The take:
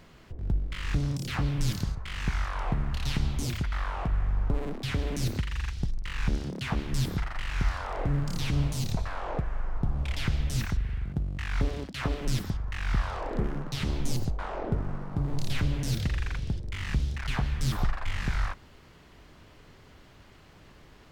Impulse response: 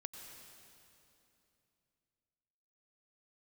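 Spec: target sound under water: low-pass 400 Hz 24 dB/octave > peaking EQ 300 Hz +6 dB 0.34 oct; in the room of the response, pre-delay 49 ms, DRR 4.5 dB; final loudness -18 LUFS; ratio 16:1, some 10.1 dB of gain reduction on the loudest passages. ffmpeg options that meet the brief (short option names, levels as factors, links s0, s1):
-filter_complex "[0:a]acompressor=threshold=0.0282:ratio=16,asplit=2[s0][s1];[1:a]atrim=start_sample=2205,adelay=49[s2];[s1][s2]afir=irnorm=-1:irlink=0,volume=0.891[s3];[s0][s3]amix=inputs=2:normalize=0,lowpass=f=400:w=0.5412,lowpass=f=400:w=1.3066,equalizer=f=300:t=o:w=0.34:g=6,volume=10"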